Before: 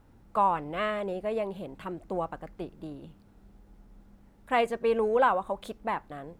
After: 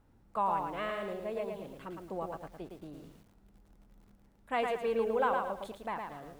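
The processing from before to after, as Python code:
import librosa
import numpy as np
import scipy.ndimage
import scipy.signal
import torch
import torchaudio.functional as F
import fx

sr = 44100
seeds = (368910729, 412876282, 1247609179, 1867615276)

y = fx.echo_crushed(x, sr, ms=111, feedback_pct=35, bits=9, wet_db=-4.0)
y = y * librosa.db_to_amplitude(-7.0)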